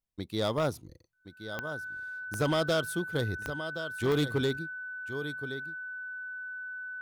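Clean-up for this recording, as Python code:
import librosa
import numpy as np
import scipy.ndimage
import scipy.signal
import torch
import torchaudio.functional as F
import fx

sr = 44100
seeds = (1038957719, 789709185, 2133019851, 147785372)

y = fx.fix_declip(x, sr, threshold_db=-22.0)
y = fx.fix_declick_ar(y, sr, threshold=10.0)
y = fx.notch(y, sr, hz=1500.0, q=30.0)
y = fx.fix_echo_inverse(y, sr, delay_ms=1072, level_db=-11.5)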